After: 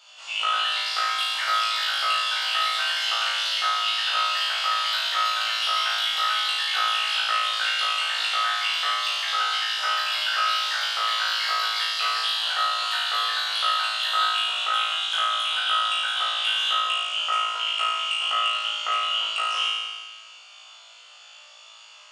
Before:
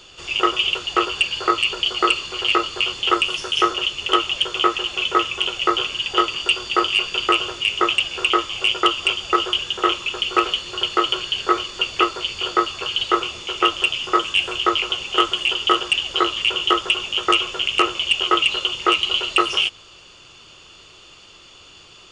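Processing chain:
elliptic high-pass filter 610 Hz, stop band 60 dB
delay with pitch and tempo change per echo 170 ms, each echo +3 semitones, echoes 3
downward compressor 2.5 to 1, threshold −22 dBFS, peak gain reduction 7.5 dB
flutter between parallel walls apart 3.1 metres, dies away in 1.4 s
level −8.5 dB

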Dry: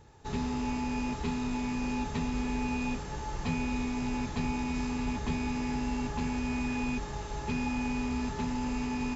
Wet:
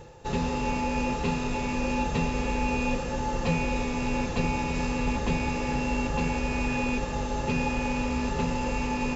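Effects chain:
rectangular room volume 3,400 cubic metres, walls mixed, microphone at 0.83 metres
reversed playback
upward compression, threshold −39 dBFS
reversed playback
hollow resonant body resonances 520/2,700 Hz, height 13 dB, ringing for 40 ms
level +4.5 dB

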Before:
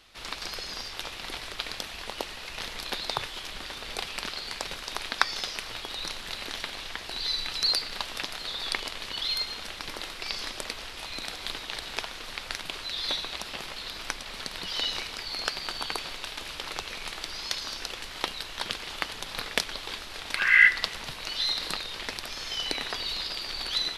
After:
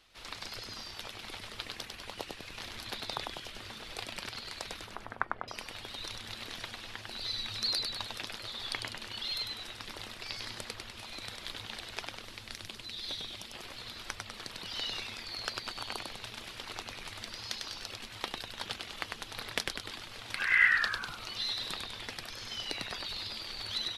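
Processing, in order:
reverb reduction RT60 0.78 s
0:04.85–0:05.48: low-pass filter 1,700 Hz 24 dB per octave
0:12.21–0:13.56: parametric band 1,200 Hz −6.5 dB 2.3 octaves
on a send: echo with shifted repeats 99 ms, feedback 56%, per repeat −120 Hz, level −3.5 dB
on the sum: level −7 dB

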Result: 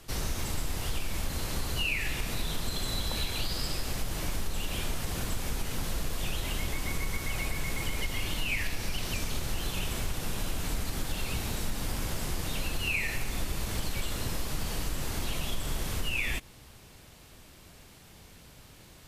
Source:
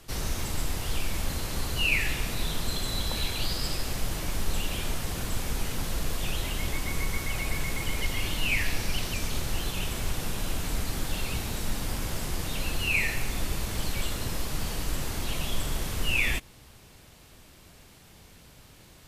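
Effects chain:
downward compressor, threshold −26 dBFS, peak gain reduction 7.5 dB

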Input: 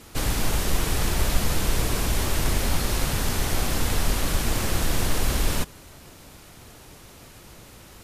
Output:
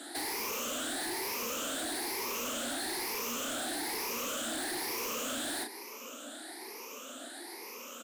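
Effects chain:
rippled gain that drifts along the octave scale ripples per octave 0.82, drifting +1.1 Hz, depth 17 dB
Butterworth high-pass 230 Hz 96 dB per octave
double-tracking delay 34 ms −10 dB
soft clipping −30 dBFS, distortion −8 dB
downward compressor, threshold −35 dBFS, peak gain reduction 4 dB

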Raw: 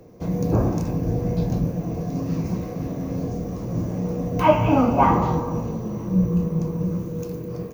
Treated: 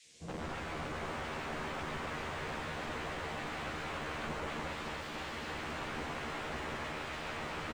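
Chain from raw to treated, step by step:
fade in at the beginning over 2.42 s
reversed playback
downward compressor 12 to 1, threshold −28 dBFS, peak gain reduction 19 dB
reversed playback
delay with a high-pass on its return 95 ms, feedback 66%, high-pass 1,500 Hz, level −5 dB
auto-filter low-pass sine 0.41 Hz 250–3,300 Hz
wrap-around overflow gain 36 dB
high-frequency loss of the air 340 metres
noise in a band 2,000–8,300 Hz −63 dBFS
double-tracking delay 13 ms −2 dB
feedback echo at a low word length 281 ms, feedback 80%, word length 11 bits, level −6.5 dB

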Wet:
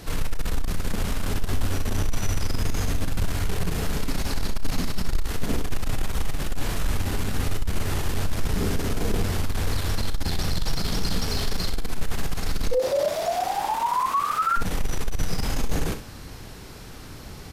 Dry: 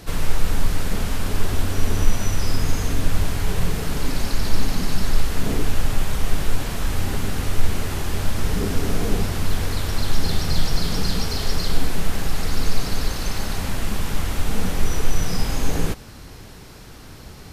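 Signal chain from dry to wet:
soft clipping −16.5 dBFS, distortion −9 dB
0:12.71–0:14.56: ring modulation 490 Hz → 1,400 Hz
ambience of single reflections 34 ms −13 dB, 63 ms −10.5 dB

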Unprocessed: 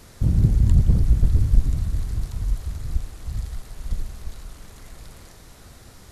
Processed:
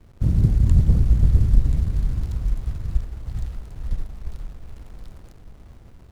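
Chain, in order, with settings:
feedback delay with all-pass diffusion 485 ms, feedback 44%, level −8.5 dB
slack as between gear wheels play −37.5 dBFS

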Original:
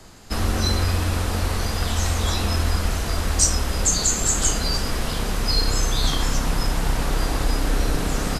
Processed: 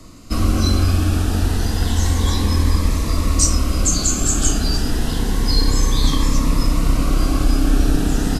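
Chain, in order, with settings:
low-shelf EQ 220 Hz +5 dB
hollow resonant body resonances 280/1,100 Hz, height 9 dB, ringing for 40 ms
phaser whose notches keep moving one way rising 0.3 Hz
level +1 dB

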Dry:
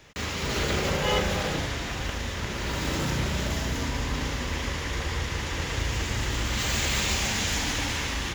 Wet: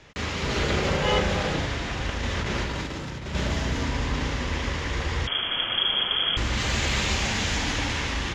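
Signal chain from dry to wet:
0:02.23–0:03.35: compressor whose output falls as the input rises −31 dBFS, ratio −0.5
high-frequency loss of the air 74 metres
0:05.27–0:06.37: voice inversion scrambler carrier 3,300 Hz
level +2.5 dB

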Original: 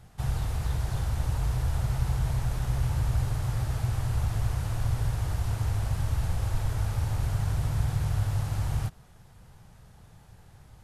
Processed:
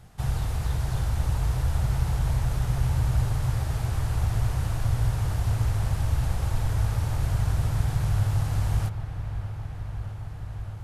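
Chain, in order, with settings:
delay with a low-pass on its return 617 ms, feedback 81%, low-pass 3,000 Hz, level −12 dB
level +2 dB

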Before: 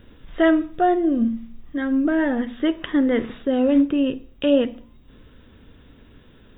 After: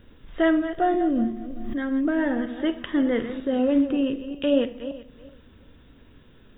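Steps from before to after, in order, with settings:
feedback delay that plays each chunk backwards 189 ms, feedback 42%, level −11 dB
four-comb reverb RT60 0.45 s, combs from 29 ms, DRR 14.5 dB
0:00.94–0:01.84: background raised ahead of every attack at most 24 dB per second
level −3.5 dB

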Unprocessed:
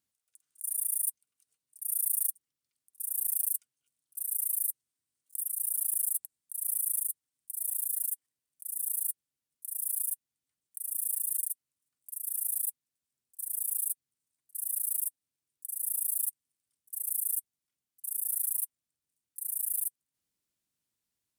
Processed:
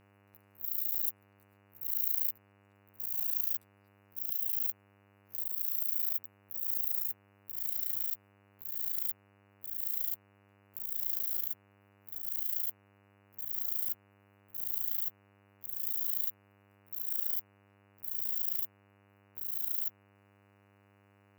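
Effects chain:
pitch shift by two crossfaded delay taps +8 semitones
hum with harmonics 100 Hz, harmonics 29, −65 dBFS −4 dB per octave

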